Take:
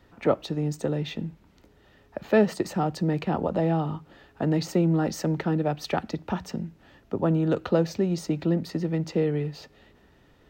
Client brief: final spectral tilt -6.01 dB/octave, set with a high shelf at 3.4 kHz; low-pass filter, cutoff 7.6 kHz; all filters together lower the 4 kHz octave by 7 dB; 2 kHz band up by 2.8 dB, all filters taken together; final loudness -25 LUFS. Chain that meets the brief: low-pass 7.6 kHz; peaking EQ 2 kHz +6.5 dB; treble shelf 3.4 kHz -7.5 dB; peaking EQ 4 kHz -5 dB; trim +2 dB

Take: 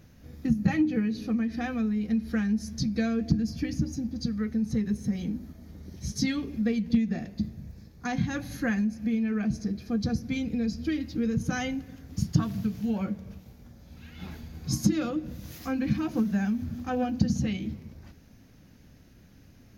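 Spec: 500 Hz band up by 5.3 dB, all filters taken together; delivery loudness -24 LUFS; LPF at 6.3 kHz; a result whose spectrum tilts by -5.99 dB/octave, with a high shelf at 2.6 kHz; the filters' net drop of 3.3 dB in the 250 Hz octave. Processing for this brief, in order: low-pass 6.3 kHz; peaking EQ 250 Hz -5.5 dB; peaking EQ 500 Hz +7.5 dB; treble shelf 2.6 kHz -4 dB; trim +7.5 dB

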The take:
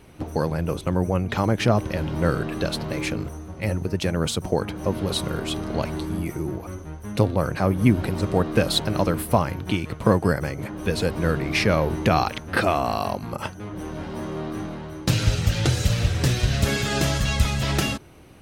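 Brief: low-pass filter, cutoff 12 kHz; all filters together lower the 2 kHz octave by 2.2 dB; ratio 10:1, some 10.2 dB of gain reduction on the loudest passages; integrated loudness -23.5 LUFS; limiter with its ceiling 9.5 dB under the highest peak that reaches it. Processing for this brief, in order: low-pass 12 kHz; peaking EQ 2 kHz -3 dB; compression 10:1, threshold -24 dBFS; trim +8 dB; peak limiter -12 dBFS

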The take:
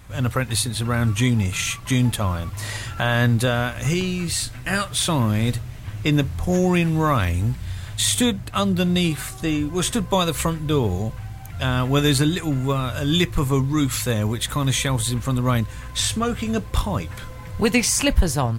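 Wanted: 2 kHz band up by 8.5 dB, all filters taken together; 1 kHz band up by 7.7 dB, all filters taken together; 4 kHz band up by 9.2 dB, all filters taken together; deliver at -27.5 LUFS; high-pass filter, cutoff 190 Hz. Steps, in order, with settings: high-pass 190 Hz; peaking EQ 1 kHz +7 dB; peaking EQ 2 kHz +6.5 dB; peaking EQ 4 kHz +8.5 dB; trim -9.5 dB

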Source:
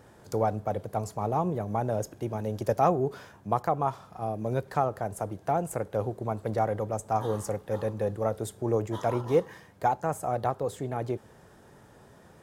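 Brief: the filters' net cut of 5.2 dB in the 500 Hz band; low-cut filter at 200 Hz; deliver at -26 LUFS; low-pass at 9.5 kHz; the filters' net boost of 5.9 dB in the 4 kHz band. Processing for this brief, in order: high-pass 200 Hz; low-pass 9.5 kHz; peaking EQ 500 Hz -6.5 dB; peaking EQ 4 kHz +7.5 dB; trim +8 dB

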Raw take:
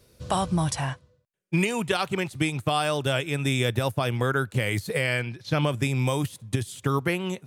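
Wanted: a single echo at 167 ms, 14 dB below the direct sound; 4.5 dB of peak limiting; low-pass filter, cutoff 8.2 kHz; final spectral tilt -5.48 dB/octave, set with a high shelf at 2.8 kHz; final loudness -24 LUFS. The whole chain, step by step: low-pass 8.2 kHz; treble shelf 2.8 kHz -6.5 dB; peak limiter -16.5 dBFS; delay 167 ms -14 dB; trim +4.5 dB

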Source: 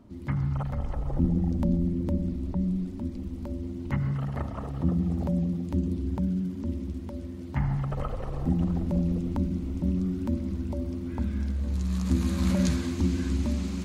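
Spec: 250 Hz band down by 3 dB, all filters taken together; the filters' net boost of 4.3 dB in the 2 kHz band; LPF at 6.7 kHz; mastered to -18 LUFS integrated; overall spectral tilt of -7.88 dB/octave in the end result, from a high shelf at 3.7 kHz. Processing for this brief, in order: low-pass 6.7 kHz; peaking EQ 250 Hz -4.5 dB; peaking EQ 2 kHz +7 dB; treble shelf 3.7 kHz -7 dB; trim +13 dB

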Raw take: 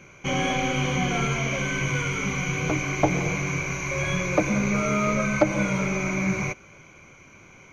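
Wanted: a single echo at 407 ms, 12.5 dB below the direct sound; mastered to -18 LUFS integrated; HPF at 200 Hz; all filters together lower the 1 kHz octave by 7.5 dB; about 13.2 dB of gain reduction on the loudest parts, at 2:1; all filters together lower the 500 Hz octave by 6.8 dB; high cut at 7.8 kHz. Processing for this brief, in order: high-pass 200 Hz; low-pass 7.8 kHz; peaking EQ 500 Hz -6 dB; peaking EQ 1 kHz -8.5 dB; compression 2:1, threshold -46 dBFS; delay 407 ms -12.5 dB; trim +21 dB

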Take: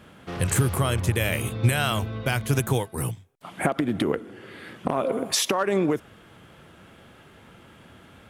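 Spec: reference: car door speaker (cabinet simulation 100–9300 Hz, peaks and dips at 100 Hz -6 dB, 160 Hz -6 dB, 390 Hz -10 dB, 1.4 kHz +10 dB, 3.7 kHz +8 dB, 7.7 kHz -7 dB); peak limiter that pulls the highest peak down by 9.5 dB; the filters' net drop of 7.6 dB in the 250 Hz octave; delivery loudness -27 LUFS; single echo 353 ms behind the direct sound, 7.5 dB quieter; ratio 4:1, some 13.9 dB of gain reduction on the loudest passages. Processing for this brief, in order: peaking EQ 250 Hz -6.5 dB; compression 4:1, threshold -34 dBFS; peak limiter -28 dBFS; cabinet simulation 100–9300 Hz, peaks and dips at 100 Hz -6 dB, 160 Hz -6 dB, 390 Hz -10 dB, 1.4 kHz +10 dB, 3.7 kHz +8 dB, 7.7 kHz -7 dB; delay 353 ms -7.5 dB; trim +12.5 dB

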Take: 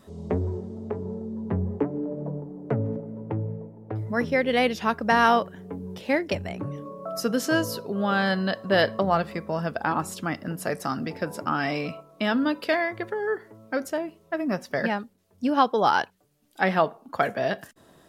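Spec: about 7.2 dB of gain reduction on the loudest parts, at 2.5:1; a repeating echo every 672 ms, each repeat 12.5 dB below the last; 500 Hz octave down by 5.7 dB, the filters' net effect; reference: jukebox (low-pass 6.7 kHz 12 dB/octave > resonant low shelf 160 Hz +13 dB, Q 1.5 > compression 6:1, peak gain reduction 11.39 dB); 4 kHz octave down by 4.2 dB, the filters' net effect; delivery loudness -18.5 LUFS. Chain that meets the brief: peaking EQ 500 Hz -6 dB; peaking EQ 4 kHz -5.5 dB; compression 2.5:1, threshold -27 dBFS; low-pass 6.7 kHz 12 dB/octave; resonant low shelf 160 Hz +13 dB, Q 1.5; feedback delay 672 ms, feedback 24%, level -12.5 dB; compression 6:1, threshold -25 dBFS; trim +13 dB

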